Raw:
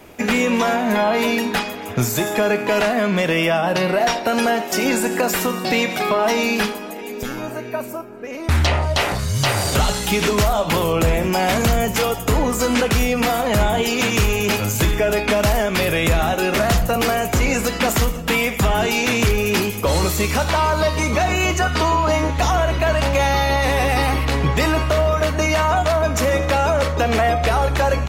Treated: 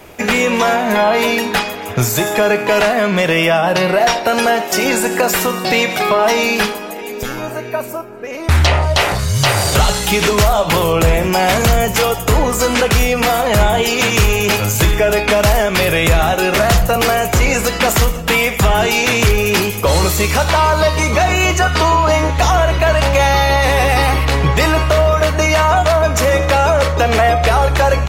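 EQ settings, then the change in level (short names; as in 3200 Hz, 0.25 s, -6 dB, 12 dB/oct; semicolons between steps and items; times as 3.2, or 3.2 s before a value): bell 250 Hz -6 dB 0.7 oct; +5.5 dB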